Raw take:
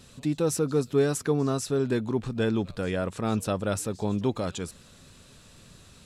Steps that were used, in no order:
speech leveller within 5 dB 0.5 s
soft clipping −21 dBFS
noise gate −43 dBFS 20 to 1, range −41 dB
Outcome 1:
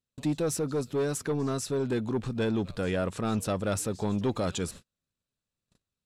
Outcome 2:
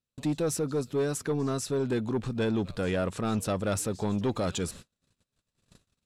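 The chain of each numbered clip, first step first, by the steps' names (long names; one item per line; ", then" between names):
soft clipping, then speech leveller, then noise gate
speech leveller, then noise gate, then soft clipping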